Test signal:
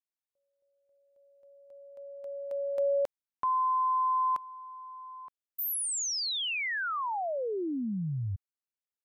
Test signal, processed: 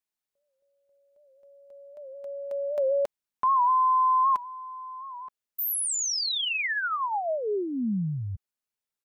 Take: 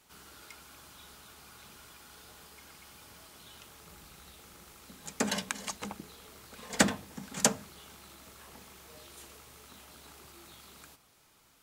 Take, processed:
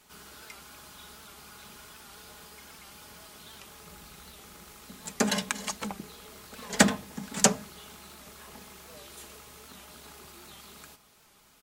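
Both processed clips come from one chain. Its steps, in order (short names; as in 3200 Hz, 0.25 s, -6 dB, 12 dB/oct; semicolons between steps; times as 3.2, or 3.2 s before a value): comb 4.8 ms, depth 32%; record warp 78 rpm, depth 100 cents; gain +3.5 dB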